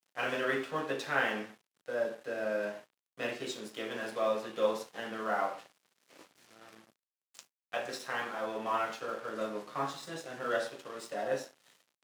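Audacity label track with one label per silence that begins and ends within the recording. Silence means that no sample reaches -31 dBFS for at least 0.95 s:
5.520000	7.390000	silence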